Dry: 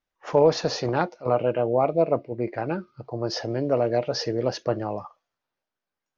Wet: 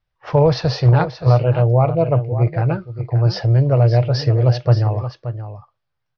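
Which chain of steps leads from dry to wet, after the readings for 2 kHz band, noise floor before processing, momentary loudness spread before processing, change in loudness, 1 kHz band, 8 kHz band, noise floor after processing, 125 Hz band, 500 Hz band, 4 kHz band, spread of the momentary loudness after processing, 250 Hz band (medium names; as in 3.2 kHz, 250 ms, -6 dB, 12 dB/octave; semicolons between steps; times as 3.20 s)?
+4.0 dB, under -85 dBFS, 10 LU, +8.5 dB, +4.0 dB, no reading, -75 dBFS, +20.0 dB, +3.0 dB, +3.5 dB, 10 LU, +5.0 dB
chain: steep low-pass 5.4 kHz 48 dB/octave; resonant low shelf 170 Hz +10.5 dB, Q 3; delay 576 ms -11.5 dB; trim +4 dB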